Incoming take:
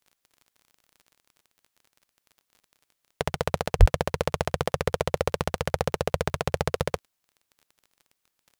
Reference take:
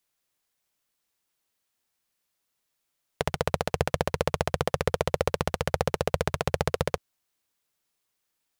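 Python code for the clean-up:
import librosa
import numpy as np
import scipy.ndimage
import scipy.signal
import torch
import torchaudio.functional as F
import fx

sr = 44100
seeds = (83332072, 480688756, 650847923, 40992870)

y = fx.fix_declick_ar(x, sr, threshold=6.5)
y = fx.fix_deplosive(y, sr, at_s=(3.79,))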